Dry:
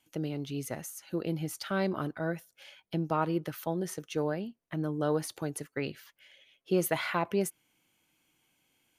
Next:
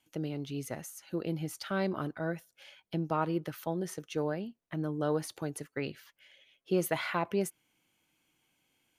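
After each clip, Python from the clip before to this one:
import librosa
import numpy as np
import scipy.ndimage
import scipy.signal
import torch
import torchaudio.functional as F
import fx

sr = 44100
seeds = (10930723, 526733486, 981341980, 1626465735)

y = fx.high_shelf(x, sr, hz=8900.0, db=-3.5)
y = y * librosa.db_to_amplitude(-1.5)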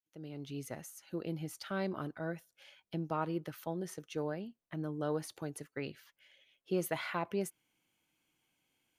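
y = fx.fade_in_head(x, sr, length_s=0.5)
y = y * librosa.db_to_amplitude(-4.5)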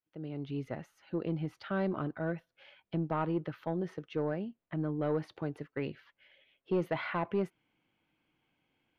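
y = 10.0 ** (-27.5 / 20.0) * np.tanh(x / 10.0 ** (-27.5 / 20.0))
y = fx.air_absorb(y, sr, metres=350.0)
y = y * librosa.db_to_amplitude(6.0)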